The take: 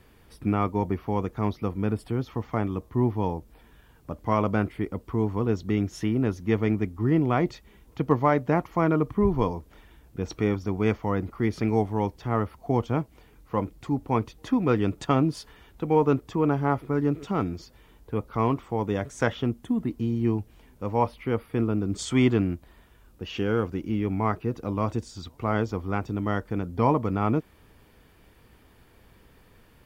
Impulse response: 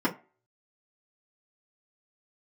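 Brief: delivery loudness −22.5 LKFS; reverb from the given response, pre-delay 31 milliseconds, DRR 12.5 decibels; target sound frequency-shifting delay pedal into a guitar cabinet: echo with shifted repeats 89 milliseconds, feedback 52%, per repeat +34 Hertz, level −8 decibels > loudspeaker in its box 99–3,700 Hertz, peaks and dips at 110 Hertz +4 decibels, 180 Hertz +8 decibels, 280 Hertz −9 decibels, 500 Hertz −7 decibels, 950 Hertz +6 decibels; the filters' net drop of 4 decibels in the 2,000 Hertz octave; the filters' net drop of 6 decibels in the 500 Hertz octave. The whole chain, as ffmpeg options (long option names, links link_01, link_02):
-filter_complex "[0:a]equalizer=frequency=500:width_type=o:gain=-3,equalizer=frequency=2000:width_type=o:gain=-5.5,asplit=2[link_01][link_02];[1:a]atrim=start_sample=2205,adelay=31[link_03];[link_02][link_03]afir=irnorm=-1:irlink=0,volume=-23.5dB[link_04];[link_01][link_04]amix=inputs=2:normalize=0,asplit=7[link_05][link_06][link_07][link_08][link_09][link_10][link_11];[link_06]adelay=89,afreqshift=34,volume=-8dB[link_12];[link_07]adelay=178,afreqshift=68,volume=-13.7dB[link_13];[link_08]adelay=267,afreqshift=102,volume=-19.4dB[link_14];[link_09]adelay=356,afreqshift=136,volume=-25dB[link_15];[link_10]adelay=445,afreqshift=170,volume=-30.7dB[link_16];[link_11]adelay=534,afreqshift=204,volume=-36.4dB[link_17];[link_05][link_12][link_13][link_14][link_15][link_16][link_17]amix=inputs=7:normalize=0,highpass=99,equalizer=frequency=110:width_type=q:width=4:gain=4,equalizer=frequency=180:width_type=q:width=4:gain=8,equalizer=frequency=280:width_type=q:width=4:gain=-9,equalizer=frequency=500:width_type=q:width=4:gain=-7,equalizer=frequency=950:width_type=q:width=4:gain=6,lowpass=frequency=3700:width=0.5412,lowpass=frequency=3700:width=1.3066,volume=3.5dB"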